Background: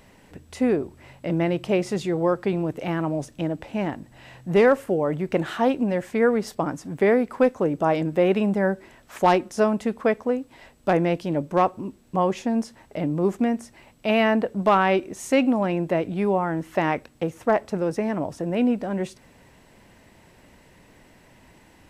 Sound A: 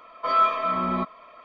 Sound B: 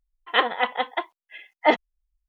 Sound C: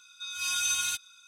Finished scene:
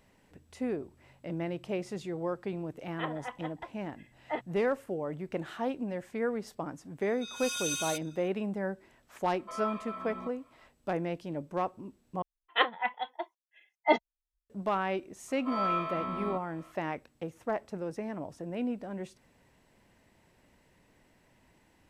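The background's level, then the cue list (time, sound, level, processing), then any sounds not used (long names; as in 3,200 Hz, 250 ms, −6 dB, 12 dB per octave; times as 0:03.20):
background −12 dB
0:02.65: mix in B −15 dB + high-frequency loss of the air 340 metres
0:07.01: mix in C −6 dB
0:09.24: mix in A −16.5 dB
0:12.22: overwrite with B −5.5 dB + noise reduction from a noise print of the clip's start 13 dB
0:15.28: mix in A −13.5 dB + every bin's largest magnitude spread in time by 120 ms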